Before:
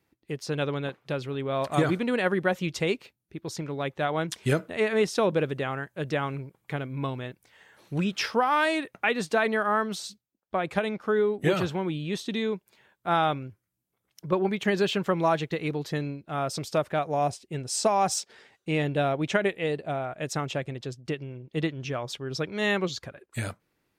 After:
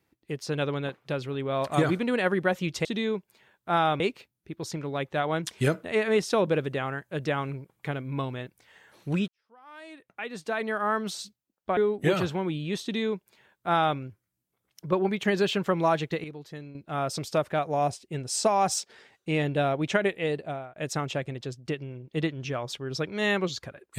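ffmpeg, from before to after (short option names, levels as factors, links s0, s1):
-filter_complex "[0:a]asplit=8[s0][s1][s2][s3][s4][s5][s6][s7];[s0]atrim=end=2.852[s8];[s1]atrim=start=12.228:end=13.382[s9];[s2]atrim=start=2.848:end=8.13,asetpts=PTS-STARTPTS,afade=t=out:st=5.278:d=0.004:c=hsin[s10];[s3]atrim=start=8.13:end=10.622,asetpts=PTS-STARTPTS,afade=t=in:d=1.78:c=qua[s11];[s4]atrim=start=11.168:end=15.642[s12];[s5]atrim=start=15.638:end=16.152,asetpts=PTS-STARTPTS,volume=0.282[s13];[s6]atrim=start=16.148:end=20.16,asetpts=PTS-STARTPTS,afade=t=out:st=3.642:d=0.37:silence=0.0944061[s14];[s7]atrim=start=20.16,asetpts=PTS-STARTPTS,afade=t=in:d=0.004:c=hsin:silence=0.0944061[s15];[s8][s9]acrossfade=d=0.004:c1=hsin:c2=hsin[s16];[s10][s11]concat=n=2:v=0:a=1[s17];[s16][s17]acrossfade=d=0.004:c1=hsin:c2=hsin[s18];[s18][s12]acrossfade=d=0.004:c1=hsin:c2=hsin[s19];[s19][s13]acrossfade=d=0.004:c1=hsin:c2=hsin[s20];[s14][s15]concat=n=2:v=0:a=1[s21];[s20][s21]acrossfade=d=0.004:c1=hsin:c2=hsin"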